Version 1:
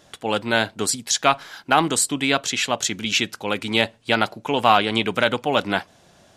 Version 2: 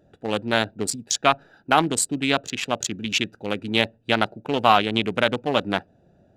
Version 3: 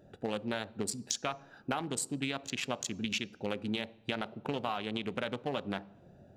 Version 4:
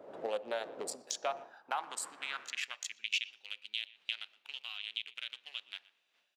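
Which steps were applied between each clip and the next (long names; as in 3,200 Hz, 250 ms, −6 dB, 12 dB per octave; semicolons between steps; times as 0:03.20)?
adaptive Wiener filter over 41 samples
brickwall limiter −7 dBFS, peak gain reduction 5 dB; downward compressor 6 to 1, threshold −32 dBFS, peak gain reduction 16 dB; on a send at −15.5 dB: convolution reverb RT60 0.70 s, pre-delay 3 ms
wind on the microphone 260 Hz −41 dBFS; far-end echo of a speakerphone 120 ms, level −19 dB; high-pass filter sweep 550 Hz → 2,900 Hz, 0:01.09–0:03.34; level −4.5 dB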